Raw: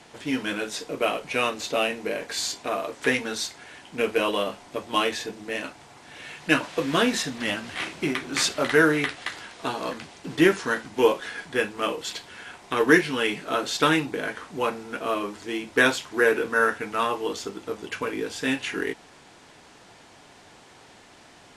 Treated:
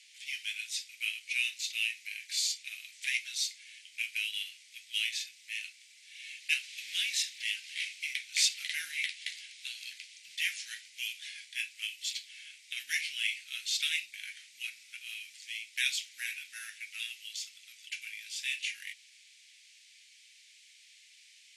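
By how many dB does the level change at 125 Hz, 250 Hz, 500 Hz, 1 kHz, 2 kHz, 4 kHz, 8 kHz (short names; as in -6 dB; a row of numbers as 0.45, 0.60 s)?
under -40 dB, under -40 dB, under -40 dB, under -40 dB, -9.5 dB, -2.5 dB, -2.0 dB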